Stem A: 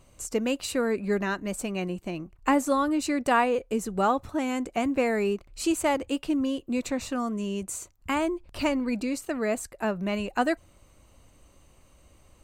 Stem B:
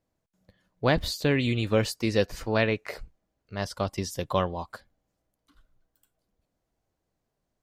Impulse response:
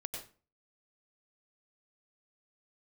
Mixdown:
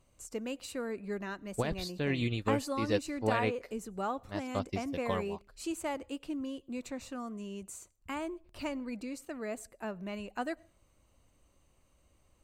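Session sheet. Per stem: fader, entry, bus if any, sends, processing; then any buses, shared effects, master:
-11.5 dB, 0.00 s, send -23.5 dB, none
0.0 dB, 0.75 s, no send, peak limiter -17.5 dBFS, peak gain reduction 9.5 dB; upward expansion 2.5:1, over -42 dBFS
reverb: on, RT60 0.35 s, pre-delay 88 ms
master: none

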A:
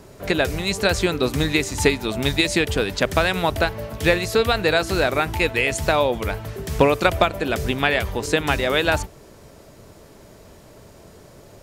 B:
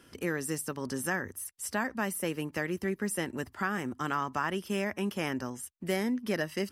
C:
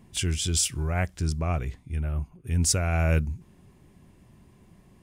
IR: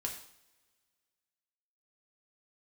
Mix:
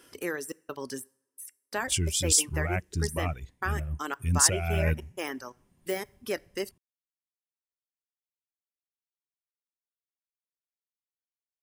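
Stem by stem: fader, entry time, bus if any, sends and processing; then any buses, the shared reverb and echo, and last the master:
mute
-2.5 dB, 0.00 s, send -7 dB, de-esser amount 85%; resonant low shelf 280 Hz -6.5 dB, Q 1.5; trance gate "xxx.xx..x.x.x" 87 bpm -60 dB
-1.5 dB, 1.75 s, no send, endings held to a fixed fall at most 520 dB/s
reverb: on, pre-delay 3 ms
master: reverb removal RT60 1.6 s; treble shelf 5.8 kHz +7.5 dB

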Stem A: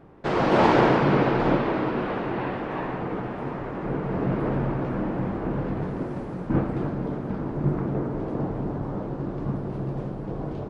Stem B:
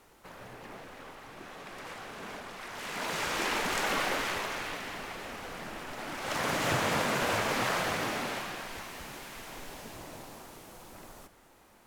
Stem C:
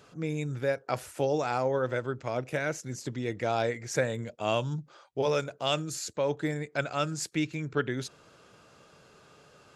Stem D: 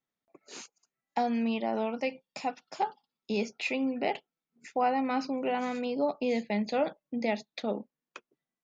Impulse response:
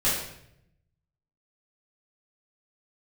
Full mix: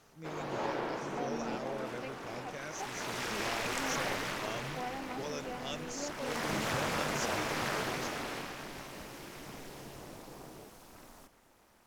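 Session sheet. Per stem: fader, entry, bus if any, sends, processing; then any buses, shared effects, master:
-17.0 dB, 0.00 s, no send, tone controls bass -8 dB, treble +5 dB
-1.5 dB, 0.00 s, no send, peaking EQ 5.4 kHz +3 dB 0.41 oct; AM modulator 260 Hz, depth 70%
-14.5 dB, 0.00 s, no send, resonant low-pass 6 kHz, resonance Q 4.9
-13.5 dB, 0.00 s, no send, none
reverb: none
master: none

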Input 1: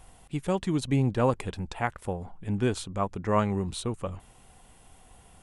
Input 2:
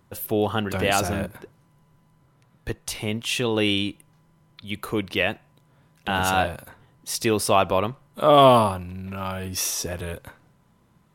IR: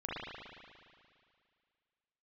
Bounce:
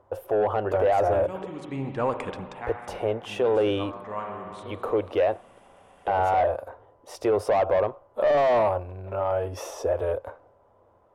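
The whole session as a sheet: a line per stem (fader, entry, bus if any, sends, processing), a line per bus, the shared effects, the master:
-8.0 dB, 0.80 s, send -15 dB, upward compressor, threshold -34 dBFS; auto duck -17 dB, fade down 0.25 s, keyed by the second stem
-0.5 dB, 0.00 s, no send, FFT filter 100 Hz 0 dB, 150 Hz -23 dB, 550 Hz +3 dB, 2 kHz -19 dB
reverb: on, RT60 2.2 s, pre-delay 37 ms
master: peaking EQ 4.1 kHz -6 dB 0.22 oct; overdrive pedal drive 21 dB, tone 1.5 kHz, clips at -6.5 dBFS; peak limiter -15.5 dBFS, peak gain reduction 8.5 dB

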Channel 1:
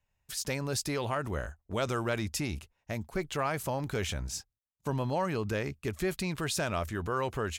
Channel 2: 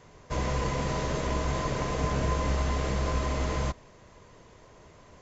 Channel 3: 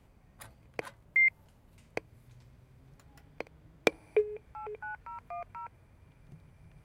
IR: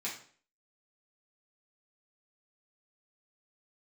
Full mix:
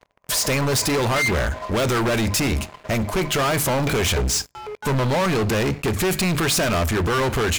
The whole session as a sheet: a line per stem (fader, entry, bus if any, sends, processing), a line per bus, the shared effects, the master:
0.0 dB, 0.00 s, send -18 dB, waveshaping leveller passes 1; hum notches 50/100/150/200/250/300 Hz
-1.0 dB, 0.00 s, send -15 dB, resonances exaggerated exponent 2; elliptic band-pass 580–6400 Hz; auto duck -21 dB, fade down 1.80 s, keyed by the first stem
-11.5 dB, 0.00 s, send -8.5 dB, none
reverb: on, RT60 0.50 s, pre-delay 3 ms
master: waveshaping leveller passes 5

